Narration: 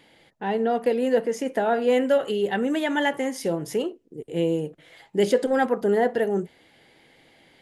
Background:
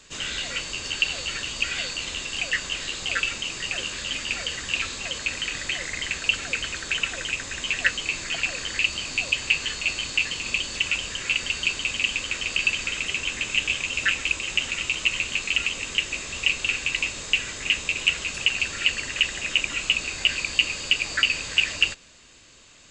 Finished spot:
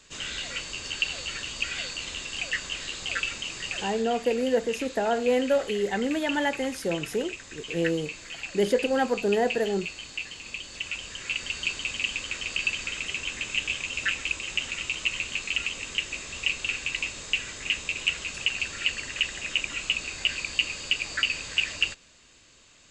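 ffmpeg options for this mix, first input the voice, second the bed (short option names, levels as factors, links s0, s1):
-filter_complex "[0:a]adelay=3400,volume=0.708[s0];[1:a]volume=1.33,afade=t=out:st=3.8:d=0.24:silence=0.446684,afade=t=in:st=10.6:d=1.07:silence=0.473151[s1];[s0][s1]amix=inputs=2:normalize=0"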